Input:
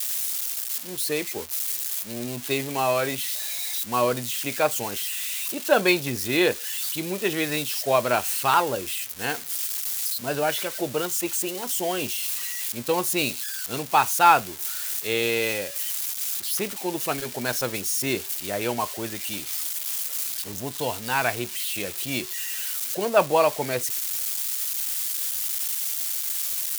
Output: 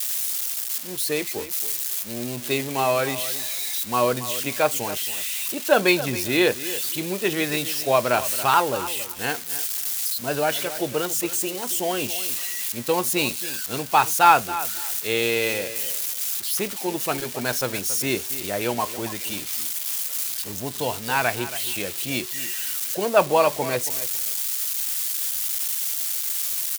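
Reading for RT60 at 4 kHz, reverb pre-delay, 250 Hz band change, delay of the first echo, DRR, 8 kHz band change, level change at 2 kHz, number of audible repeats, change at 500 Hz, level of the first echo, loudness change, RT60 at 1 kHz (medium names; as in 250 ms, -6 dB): no reverb, no reverb, +1.5 dB, 276 ms, no reverb, +1.5 dB, +1.5 dB, 2, +1.5 dB, -14.0 dB, +1.5 dB, no reverb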